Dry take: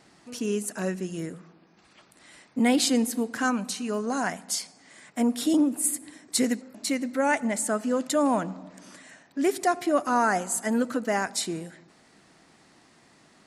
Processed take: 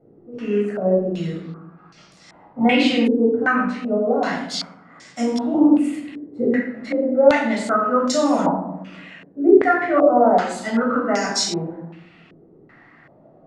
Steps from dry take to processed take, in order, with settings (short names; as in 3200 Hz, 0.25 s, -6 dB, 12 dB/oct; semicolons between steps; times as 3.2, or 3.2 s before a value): notches 60/120/180/240 Hz; reverb RT60 0.75 s, pre-delay 13 ms, DRR -3 dB; stepped low-pass 2.6 Hz 420–5700 Hz; gain -3 dB